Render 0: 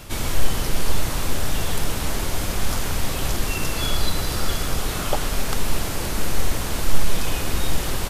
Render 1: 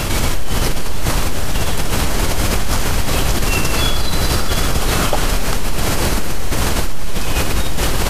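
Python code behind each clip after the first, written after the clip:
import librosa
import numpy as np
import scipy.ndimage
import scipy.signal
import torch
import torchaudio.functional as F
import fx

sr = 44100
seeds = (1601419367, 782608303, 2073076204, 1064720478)

y = fx.high_shelf(x, sr, hz=11000.0, db=-5.5)
y = fx.notch(y, sr, hz=3600.0, q=30.0)
y = fx.env_flatten(y, sr, amount_pct=70)
y = F.gain(torch.from_numpy(y), -4.0).numpy()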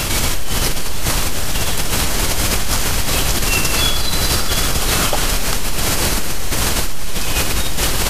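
y = fx.high_shelf(x, sr, hz=2000.0, db=7.5)
y = F.gain(torch.from_numpy(y), -2.5).numpy()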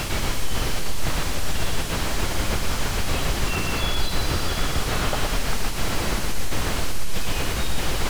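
y = x * (1.0 - 0.32 / 2.0 + 0.32 / 2.0 * np.cos(2.0 * np.pi * 6.7 * (np.arange(len(x)) / sr)))
y = y + 10.0 ** (-5.5 / 20.0) * np.pad(y, (int(117 * sr / 1000.0), 0))[:len(y)]
y = fx.slew_limit(y, sr, full_power_hz=280.0)
y = F.gain(torch.from_numpy(y), -5.0).numpy()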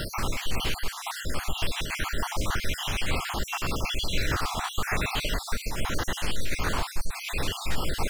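y = fx.spec_dropout(x, sr, seeds[0], share_pct=47)
y = fx.bell_lfo(y, sr, hz=0.87, low_hz=900.0, high_hz=3100.0, db=9)
y = F.gain(torch.from_numpy(y), -3.5).numpy()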